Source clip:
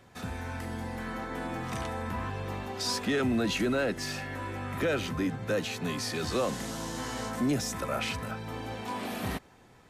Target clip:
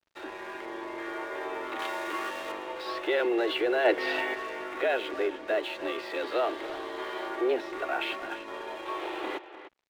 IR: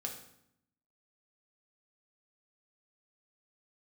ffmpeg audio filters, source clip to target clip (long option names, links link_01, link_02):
-filter_complex "[0:a]highpass=frequency=200:width_type=q:width=0.5412,highpass=frequency=200:width_type=q:width=1.307,lowpass=frequency=3600:width_type=q:width=0.5176,lowpass=frequency=3600:width_type=q:width=0.7071,lowpass=frequency=3600:width_type=q:width=1.932,afreqshift=120,asplit=3[link_01][link_02][link_03];[link_01]afade=type=out:start_time=3.84:duration=0.02[link_04];[link_02]acontrast=79,afade=type=in:start_time=3.84:duration=0.02,afade=type=out:start_time=4.33:duration=0.02[link_05];[link_03]afade=type=in:start_time=4.33:duration=0.02[link_06];[link_04][link_05][link_06]amix=inputs=3:normalize=0,aeval=exprs='sgn(val(0))*max(abs(val(0))-0.00237,0)':channel_layout=same,asettb=1/sr,asplit=3[link_07][link_08][link_09];[link_07]atrim=end=1.794[link_10];[link_08]atrim=start=1.79:end=2.52,asetpts=PTS-STARTPTS,afade=type=in:duration=0.004:curve=qsin,afade=type=out:start_time=0.726:duration=0.004:curve=qsin,highshelf=frequency=2600:gain=11[link_11];[link_09]atrim=start=2.516[link_12];[link_10][link_11]acrossfade=duration=0.004:curve1=hsin:curve2=qsin[link_13];[link_13][link_12]acrossfade=duration=0.004:curve1=qsin:curve2=hsin,asplit=2[link_14][link_15];[link_15]adelay=300,highpass=300,lowpass=3400,asoftclip=type=hard:threshold=-30.5dB,volume=-11dB[link_16];[link_14][link_16]amix=inputs=2:normalize=0,volume=2dB"